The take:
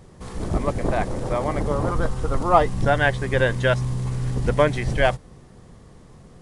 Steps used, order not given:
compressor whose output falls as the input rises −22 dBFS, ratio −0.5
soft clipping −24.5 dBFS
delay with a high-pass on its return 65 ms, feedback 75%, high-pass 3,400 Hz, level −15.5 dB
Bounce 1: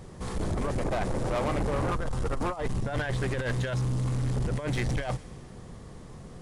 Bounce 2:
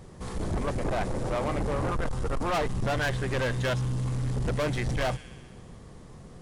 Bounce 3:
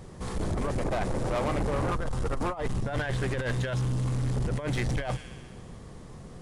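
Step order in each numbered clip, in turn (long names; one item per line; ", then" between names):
compressor whose output falls as the input rises, then delay with a high-pass on its return, then soft clipping
delay with a high-pass on its return, then soft clipping, then compressor whose output falls as the input rises
delay with a high-pass on its return, then compressor whose output falls as the input rises, then soft clipping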